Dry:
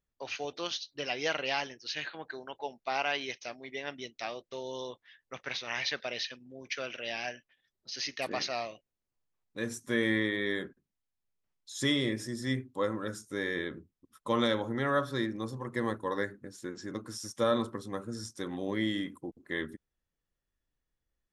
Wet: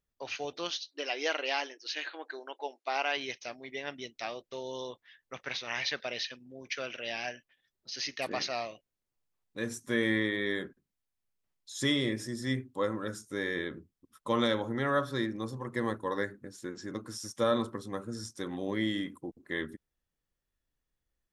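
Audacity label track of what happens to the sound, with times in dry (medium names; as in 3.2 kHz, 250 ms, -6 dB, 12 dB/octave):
0.700000	3.170000	brick-wall FIR band-pass 260–11000 Hz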